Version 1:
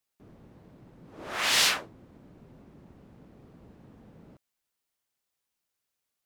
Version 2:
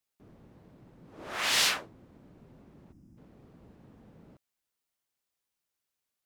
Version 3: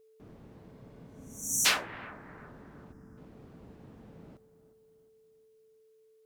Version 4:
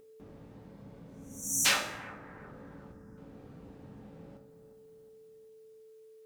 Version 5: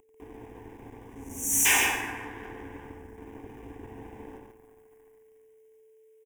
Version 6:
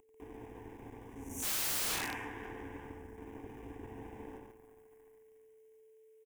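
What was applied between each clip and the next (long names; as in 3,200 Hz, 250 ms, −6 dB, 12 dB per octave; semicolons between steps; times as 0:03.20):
gain on a spectral selection 0:02.92–0:03.17, 350–4,800 Hz −16 dB; level −2.5 dB
steady tone 440 Hz −63 dBFS; bucket-brigade delay 360 ms, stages 4,096, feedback 45%, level −15 dB; healed spectral selection 0:00.75–0:01.63, 300–5,600 Hz before; level +3.5 dB
in parallel at −1 dB: upward compression, threshold −45 dBFS; on the sum: convolution reverb RT60 0.65 s, pre-delay 3 ms, DRR 3 dB; level −7.5 dB
leveller curve on the samples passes 3; phaser with its sweep stopped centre 870 Hz, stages 8; on a send: loudspeakers that aren't time-aligned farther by 31 metres −8 dB, 49 metres −5 dB
wrap-around overflow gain 26 dB; level −3.5 dB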